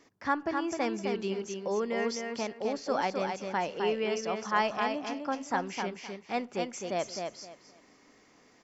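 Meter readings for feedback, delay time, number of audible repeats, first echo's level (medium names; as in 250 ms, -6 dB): 22%, 259 ms, 3, -5.0 dB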